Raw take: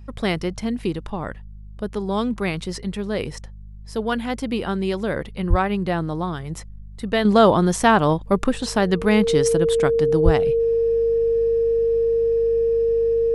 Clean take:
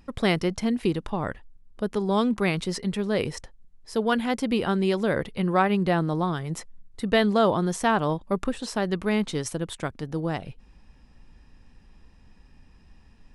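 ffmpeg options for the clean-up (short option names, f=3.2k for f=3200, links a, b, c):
-filter_complex "[0:a]bandreject=f=50.9:t=h:w=4,bandreject=f=101.8:t=h:w=4,bandreject=f=152.7:t=h:w=4,bandreject=f=203.6:t=h:w=4,bandreject=f=460:w=30,asplit=3[a][b][c];[a]afade=t=out:st=5.49:d=0.02[d];[b]highpass=f=140:w=0.5412,highpass=f=140:w=1.3066,afade=t=in:st=5.49:d=0.02,afade=t=out:st=5.61:d=0.02[e];[c]afade=t=in:st=5.61:d=0.02[f];[d][e][f]amix=inputs=3:normalize=0,asplit=3[g][h][i];[g]afade=t=out:st=10.24:d=0.02[j];[h]highpass=f=140:w=0.5412,highpass=f=140:w=1.3066,afade=t=in:st=10.24:d=0.02,afade=t=out:st=10.36:d=0.02[k];[i]afade=t=in:st=10.36:d=0.02[l];[j][k][l]amix=inputs=3:normalize=0,asetnsamples=n=441:p=0,asendcmd='7.25 volume volume -7dB',volume=0dB"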